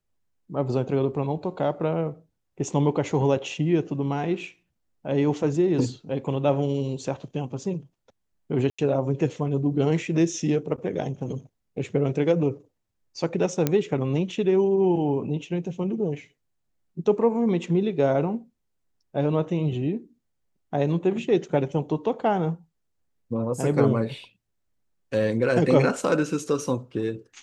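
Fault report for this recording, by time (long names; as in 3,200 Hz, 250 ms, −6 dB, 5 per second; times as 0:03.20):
0:08.70–0:08.79: drop-out 85 ms
0:13.67: click −8 dBFS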